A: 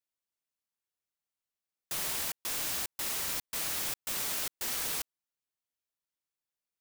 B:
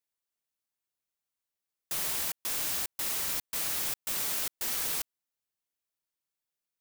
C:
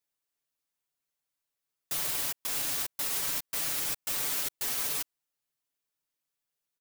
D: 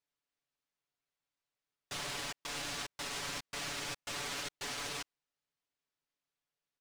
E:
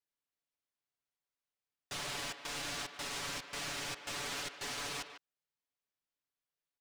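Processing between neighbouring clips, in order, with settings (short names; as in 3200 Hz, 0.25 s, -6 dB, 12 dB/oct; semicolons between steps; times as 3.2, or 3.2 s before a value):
high shelf 9700 Hz +3.5 dB
comb 7 ms, depth 81%; limiter -21 dBFS, peak gain reduction 4.5 dB
air absorption 96 m
sample leveller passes 1; speakerphone echo 0.15 s, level -8 dB; gain -3.5 dB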